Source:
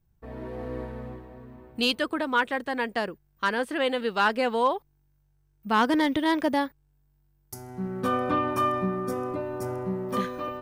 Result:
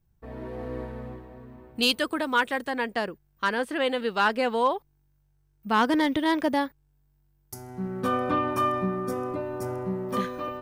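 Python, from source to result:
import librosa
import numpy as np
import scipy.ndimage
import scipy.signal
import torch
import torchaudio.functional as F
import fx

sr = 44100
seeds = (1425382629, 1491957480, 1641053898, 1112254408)

y = fx.high_shelf(x, sr, hz=5400.0, db=9.0, at=(1.82, 2.7))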